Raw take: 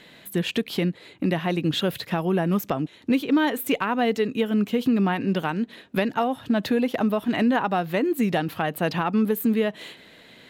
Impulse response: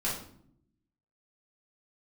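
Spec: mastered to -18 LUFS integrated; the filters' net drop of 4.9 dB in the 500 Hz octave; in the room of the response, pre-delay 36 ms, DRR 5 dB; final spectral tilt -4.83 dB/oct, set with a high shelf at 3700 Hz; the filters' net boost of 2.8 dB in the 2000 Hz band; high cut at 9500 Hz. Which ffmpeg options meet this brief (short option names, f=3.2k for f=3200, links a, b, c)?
-filter_complex "[0:a]lowpass=9.5k,equalizer=f=500:t=o:g=-6.5,equalizer=f=2k:t=o:g=5,highshelf=f=3.7k:g=-4,asplit=2[a][b];[1:a]atrim=start_sample=2205,adelay=36[c];[b][c]afir=irnorm=-1:irlink=0,volume=-11.5dB[d];[a][d]amix=inputs=2:normalize=0,volume=5.5dB"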